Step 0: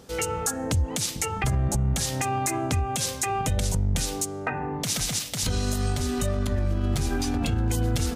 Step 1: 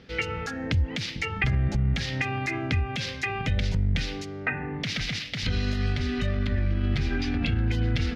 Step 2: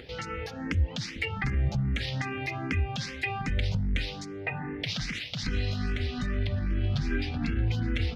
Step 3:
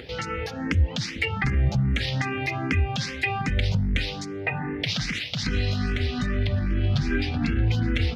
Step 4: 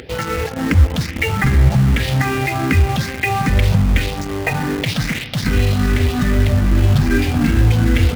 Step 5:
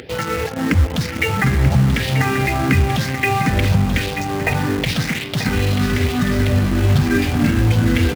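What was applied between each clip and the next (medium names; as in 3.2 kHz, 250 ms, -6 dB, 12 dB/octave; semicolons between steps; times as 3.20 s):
FFT filter 220 Hz 0 dB, 990 Hz -9 dB, 2 kHz +8 dB, 5 kHz -4 dB, 8.3 kHz -29 dB
upward compressor, threshold -36 dBFS; barber-pole phaser +2.5 Hz
high-pass 46 Hz; trim +5.5 dB
peaking EQ 4.6 kHz -8.5 dB 1.8 oct; in parallel at -4 dB: bit crusher 5-bit; on the sum: spring tank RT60 3.2 s, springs 52/58 ms, chirp 50 ms, DRR 13.5 dB; trim +5.5 dB
high-pass 85 Hz; on a send: delay 936 ms -9 dB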